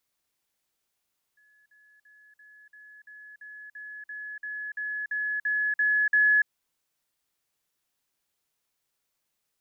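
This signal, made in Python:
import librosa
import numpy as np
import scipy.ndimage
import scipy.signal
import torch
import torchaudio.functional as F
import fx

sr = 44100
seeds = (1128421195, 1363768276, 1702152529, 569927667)

y = fx.level_ladder(sr, hz=1700.0, from_db=-59.5, step_db=3.0, steps=15, dwell_s=0.29, gap_s=0.05)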